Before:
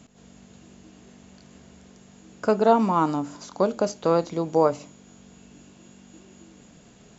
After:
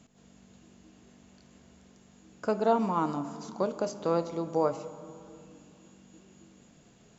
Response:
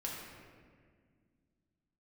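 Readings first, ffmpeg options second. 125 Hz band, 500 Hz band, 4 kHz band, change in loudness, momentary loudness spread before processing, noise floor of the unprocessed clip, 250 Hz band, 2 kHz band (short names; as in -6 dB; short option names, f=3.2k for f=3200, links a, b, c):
-6.5 dB, -7.0 dB, -7.0 dB, -7.0 dB, 11 LU, -52 dBFS, -6.5 dB, -7.0 dB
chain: -filter_complex "[0:a]asplit=2[a][b];[1:a]atrim=start_sample=2205,asetrate=28224,aresample=44100[c];[b][c]afir=irnorm=-1:irlink=0,volume=-14dB[d];[a][d]amix=inputs=2:normalize=0,volume=-8.5dB"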